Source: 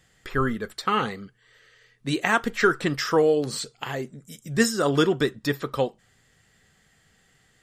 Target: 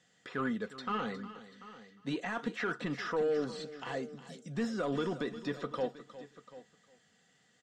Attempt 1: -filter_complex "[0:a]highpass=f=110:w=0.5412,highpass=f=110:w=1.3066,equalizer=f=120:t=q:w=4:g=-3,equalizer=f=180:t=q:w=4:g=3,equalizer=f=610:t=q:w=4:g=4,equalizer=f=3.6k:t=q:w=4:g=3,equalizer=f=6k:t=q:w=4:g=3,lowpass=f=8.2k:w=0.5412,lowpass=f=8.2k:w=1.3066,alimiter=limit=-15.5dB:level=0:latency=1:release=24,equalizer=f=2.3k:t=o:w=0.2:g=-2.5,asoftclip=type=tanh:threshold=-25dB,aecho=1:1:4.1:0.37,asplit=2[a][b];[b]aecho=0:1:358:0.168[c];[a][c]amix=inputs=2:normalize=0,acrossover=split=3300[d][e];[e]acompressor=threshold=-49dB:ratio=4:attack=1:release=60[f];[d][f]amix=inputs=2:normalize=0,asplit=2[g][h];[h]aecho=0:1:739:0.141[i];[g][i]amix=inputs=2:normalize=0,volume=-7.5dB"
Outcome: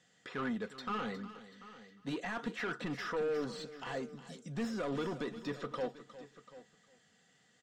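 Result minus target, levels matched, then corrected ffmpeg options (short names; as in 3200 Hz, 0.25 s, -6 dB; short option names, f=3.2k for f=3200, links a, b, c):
soft clip: distortion +8 dB
-filter_complex "[0:a]highpass=f=110:w=0.5412,highpass=f=110:w=1.3066,equalizer=f=120:t=q:w=4:g=-3,equalizer=f=180:t=q:w=4:g=3,equalizer=f=610:t=q:w=4:g=4,equalizer=f=3.6k:t=q:w=4:g=3,equalizer=f=6k:t=q:w=4:g=3,lowpass=f=8.2k:w=0.5412,lowpass=f=8.2k:w=1.3066,alimiter=limit=-15.5dB:level=0:latency=1:release=24,equalizer=f=2.3k:t=o:w=0.2:g=-2.5,asoftclip=type=tanh:threshold=-18dB,aecho=1:1:4.1:0.37,asplit=2[a][b];[b]aecho=0:1:358:0.168[c];[a][c]amix=inputs=2:normalize=0,acrossover=split=3300[d][e];[e]acompressor=threshold=-49dB:ratio=4:attack=1:release=60[f];[d][f]amix=inputs=2:normalize=0,asplit=2[g][h];[h]aecho=0:1:739:0.141[i];[g][i]amix=inputs=2:normalize=0,volume=-7.5dB"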